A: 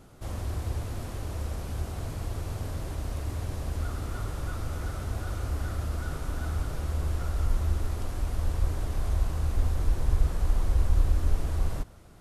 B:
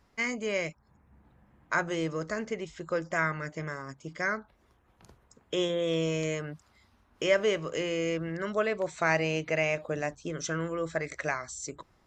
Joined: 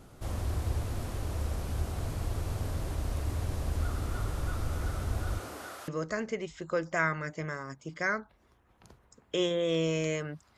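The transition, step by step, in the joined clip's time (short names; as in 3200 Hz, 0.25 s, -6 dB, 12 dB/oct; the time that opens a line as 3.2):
A
5.38–5.88 HPF 190 Hz -> 830 Hz
5.88 switch to B from 2.07 s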